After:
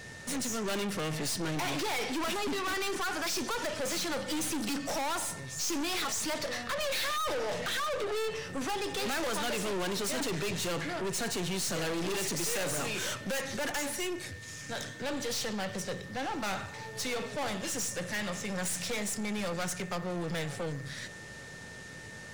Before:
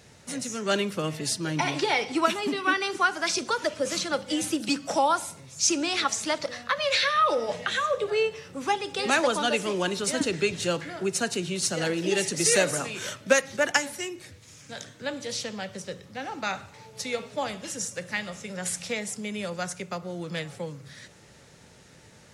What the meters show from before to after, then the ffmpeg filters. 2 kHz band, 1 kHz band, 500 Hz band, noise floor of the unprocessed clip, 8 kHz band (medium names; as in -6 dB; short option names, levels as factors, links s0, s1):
-6.5 dB, -7.5 dB, -6.5 dB, -53 dBFS, -4.5 dB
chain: -af "aeval=exprs='val(0)+0.00251*sin(2*PI*1800*n/s)':c=same,aeval=exprs='(tanh(79.4*val(0)+0.4)-tanh(0.4))/79.4':c=same,volume=2.11"